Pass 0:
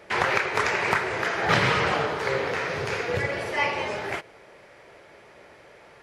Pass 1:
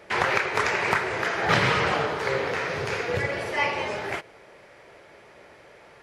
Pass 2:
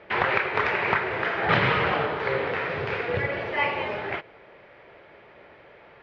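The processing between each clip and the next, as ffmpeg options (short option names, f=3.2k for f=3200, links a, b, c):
-af anull
-af "lowpass=f=3.5k:w=0.5412,lowpass=f=3.5k:w=1.3066"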